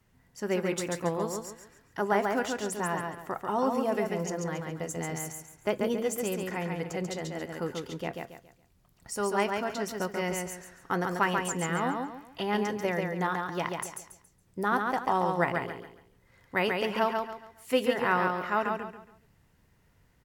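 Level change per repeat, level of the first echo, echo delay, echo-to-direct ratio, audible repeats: −10.0 dB, −4.0 dB, 139 ms, −3.5 dB, 4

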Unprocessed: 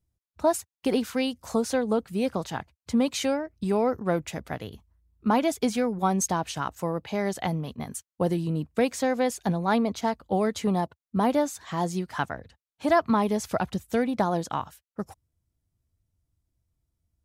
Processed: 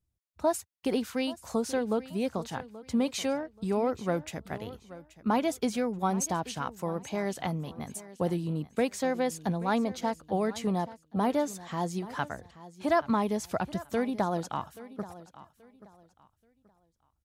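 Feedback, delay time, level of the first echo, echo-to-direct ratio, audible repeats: 27%, 830 ms, −17.0 dB, −16.5 dB, 2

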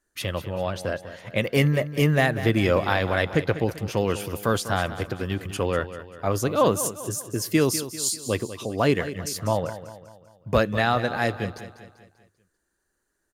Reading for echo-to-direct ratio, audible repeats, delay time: −12.0 dB, 4, 196 ms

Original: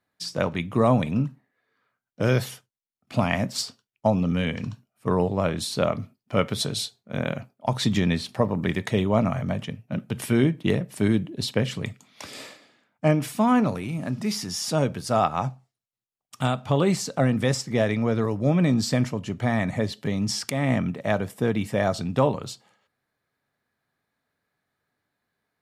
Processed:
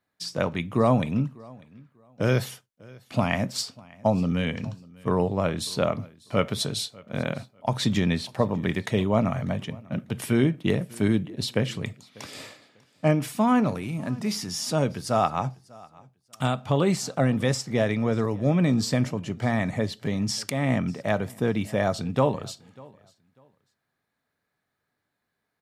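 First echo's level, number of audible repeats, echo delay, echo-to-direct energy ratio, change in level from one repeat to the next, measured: −24.0 dB, 1, 595 ms, −24.0 dB, repeats not evenly spaced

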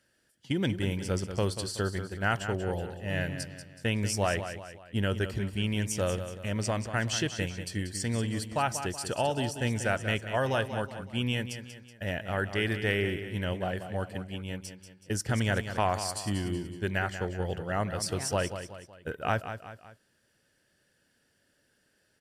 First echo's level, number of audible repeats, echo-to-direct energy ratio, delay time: −10.0 dB, 3, −9.0 dB, 187 ms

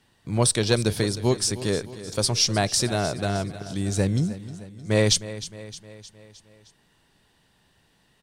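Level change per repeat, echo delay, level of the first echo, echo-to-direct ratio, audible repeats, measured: −5.0 dB, 309 ms, −15.0 dB, −13.5 dB, 4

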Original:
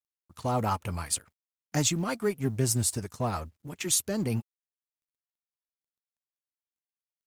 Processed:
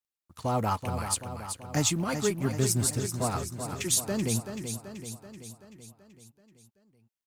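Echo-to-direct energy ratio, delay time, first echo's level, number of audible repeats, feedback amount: −6.0 dB, 382 ms, −8.0 dB, 6, 58%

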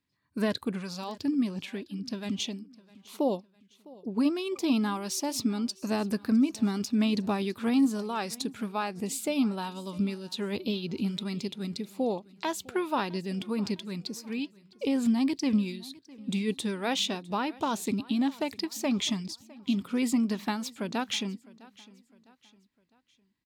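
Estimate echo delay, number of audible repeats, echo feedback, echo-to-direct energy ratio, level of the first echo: 656 ms, 2, 42%, −21.0 dB, −22.0 dB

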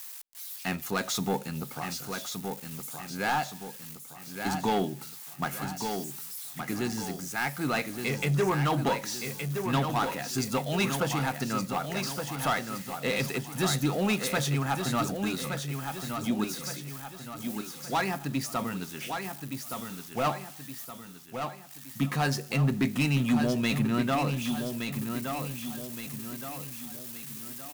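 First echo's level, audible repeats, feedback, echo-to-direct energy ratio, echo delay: −6.5 dB, 5, 45%, −5.5 dB, 1,169 ms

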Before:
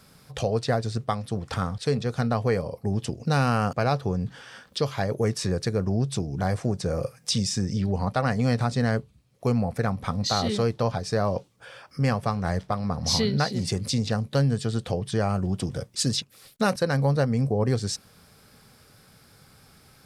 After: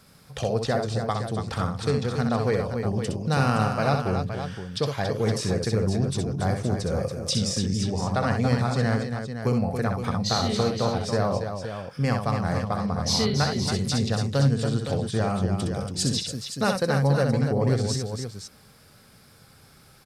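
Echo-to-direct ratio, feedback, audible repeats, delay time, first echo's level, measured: −2.5 dB, repeats not evenly spaced, 3, 64 ms, −5.5 dB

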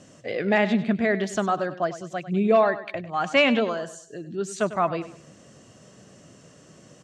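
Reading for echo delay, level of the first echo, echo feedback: 99 ms, −14.0 dB, 35%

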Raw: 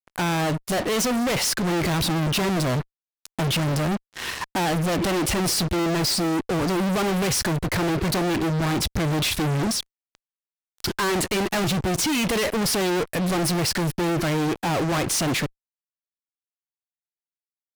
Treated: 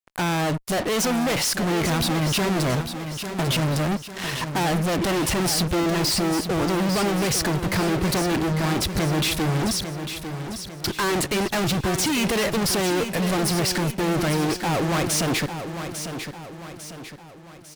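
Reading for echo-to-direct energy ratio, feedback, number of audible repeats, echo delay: −8.0 dB, 46%, 4, 849 ms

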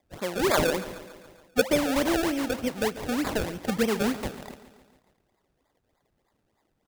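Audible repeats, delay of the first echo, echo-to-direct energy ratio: 5, 140 ms, −13.5 dB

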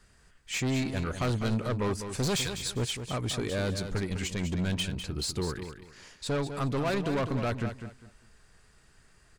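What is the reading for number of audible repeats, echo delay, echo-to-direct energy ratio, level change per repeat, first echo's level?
3, 201 ms, −8.5 dB, −12.0 dB, −9.0 dB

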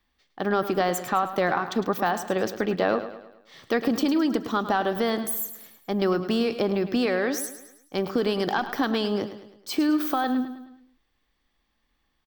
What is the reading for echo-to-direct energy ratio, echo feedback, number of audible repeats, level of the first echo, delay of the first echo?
−11.0 dB, 47%, 4, −12.0 dB, 106 ms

